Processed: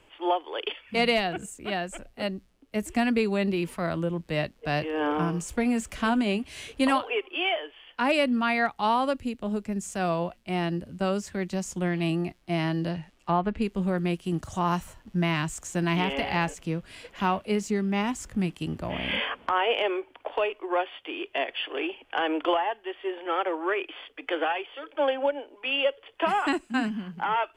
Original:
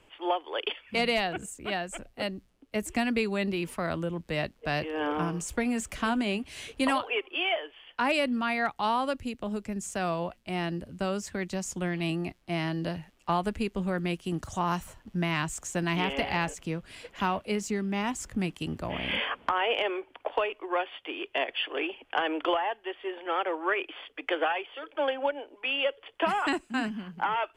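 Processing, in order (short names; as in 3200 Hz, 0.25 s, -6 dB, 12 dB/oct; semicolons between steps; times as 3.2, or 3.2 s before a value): 12.89–13.62 treble ducked by the level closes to 2300 Hz, closed at -24 dBFS; harmonic-percussive split percussive -6 dB; gain +4 dB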